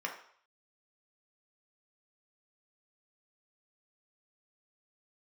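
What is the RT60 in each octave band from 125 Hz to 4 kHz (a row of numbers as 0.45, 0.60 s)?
0.35, 0.45, 0.55, 0.65, 0.55, 0.60 s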